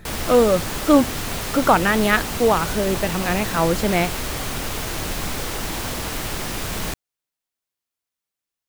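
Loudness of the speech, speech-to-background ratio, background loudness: -20.0 LUFS, 6.5 dB, -26.5 LUFS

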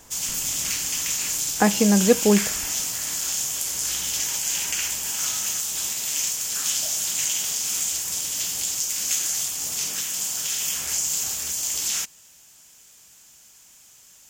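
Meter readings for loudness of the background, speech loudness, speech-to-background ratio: -23.5 LUFS, -20.0 LUFS, 3.5 dB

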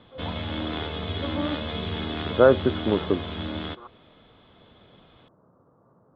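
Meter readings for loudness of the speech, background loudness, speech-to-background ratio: -24.0 LUFS, -31.5 LUFS, 7.5 dB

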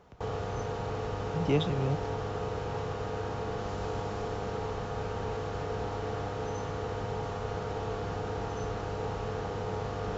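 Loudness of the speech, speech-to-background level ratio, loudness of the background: -32.0 LUFS, 3.0 dB, -35.0 LUFS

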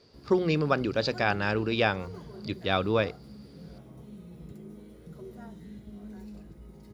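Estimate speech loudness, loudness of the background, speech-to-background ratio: -27.5 LUFS, -46.5 LUFS, 19.0 dB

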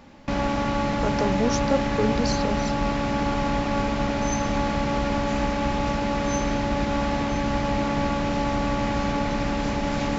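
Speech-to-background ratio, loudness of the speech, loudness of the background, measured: -3.0 dB, -28.0 LUFS, -25.0 LUFS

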